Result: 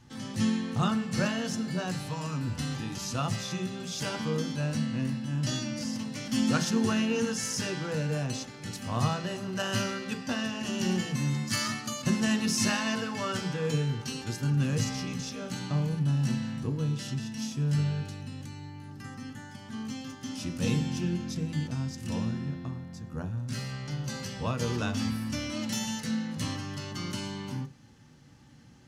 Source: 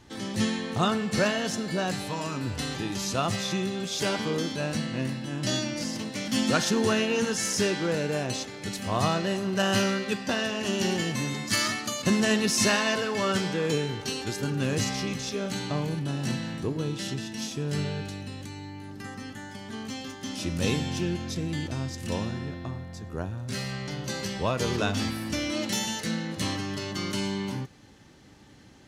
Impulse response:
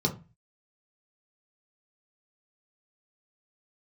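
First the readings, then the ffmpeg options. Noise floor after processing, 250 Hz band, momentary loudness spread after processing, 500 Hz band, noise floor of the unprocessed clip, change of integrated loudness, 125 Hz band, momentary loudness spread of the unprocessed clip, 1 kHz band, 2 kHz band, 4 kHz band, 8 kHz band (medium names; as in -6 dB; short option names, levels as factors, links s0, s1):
-47 dBFS, -1.0 dB, 11 LU, -7.0 dB, -42 dBFS, -2.5 dB, +1.5 dB, 11 LU, -5.0 dB, -5.5 dB, -5.5 dB, -4.0 dB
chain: -filter_complex "[0:a]asplit=2[s0][s1];[1:a]atrim=start_sample=2205,atrim=end_sample=3528,highshelf=f=5200:g=-11[s2];[s1][s2]afir=irnorm=-1:irlink=0,volume=0.15[s3];[s0][s3]amix=inputs=2:normalize=0,volume=0.596"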